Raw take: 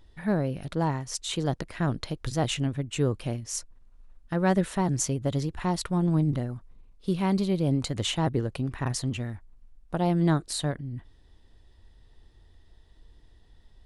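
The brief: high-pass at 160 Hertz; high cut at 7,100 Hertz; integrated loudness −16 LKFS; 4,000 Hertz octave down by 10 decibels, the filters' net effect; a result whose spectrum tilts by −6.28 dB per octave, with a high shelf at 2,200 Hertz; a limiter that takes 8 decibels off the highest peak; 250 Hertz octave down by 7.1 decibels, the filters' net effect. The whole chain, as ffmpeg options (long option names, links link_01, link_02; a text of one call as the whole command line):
ffmpeg -i in.wav -af "highpass=160,lowpass=7100,equalizer=frequency=250:width_type=o:gain=-9,highshelf=frequency=2200:gain=-7,equalizer=frequency=4000:width_type=o:gain=-6.5,volume=19.5dB,alimiter=limit=-3.5dB:level=0:latency=1" out.wav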